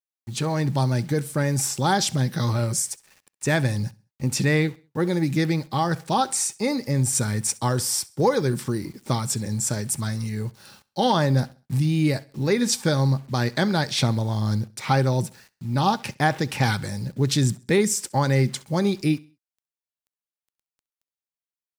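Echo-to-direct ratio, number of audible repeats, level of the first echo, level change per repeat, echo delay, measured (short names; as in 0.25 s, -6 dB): -22.0 dB, 2, -22.5 dB, -8.5 dB, 66 ms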